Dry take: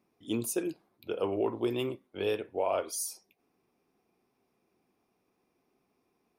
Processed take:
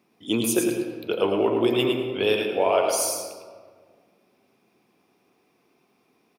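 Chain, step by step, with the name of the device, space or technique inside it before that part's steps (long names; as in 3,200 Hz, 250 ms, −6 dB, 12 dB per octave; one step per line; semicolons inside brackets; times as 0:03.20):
PA in a hall (high-pass filter 110 Hz; parametric band 3,100 Hz +5 dB 1.4 octaves; single-tap delay 106 ms −5.5 dB; convolution reverb RT60 1.7 s, pre-delay 82 ms, DRR 6.5 dB)
level +7.5 dB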